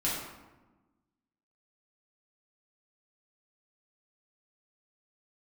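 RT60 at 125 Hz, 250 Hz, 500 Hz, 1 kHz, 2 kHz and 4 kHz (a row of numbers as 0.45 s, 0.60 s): 1.5 s, 1.6 s, 1.2 s, 1.1 s, 0.90 s, 0.65 s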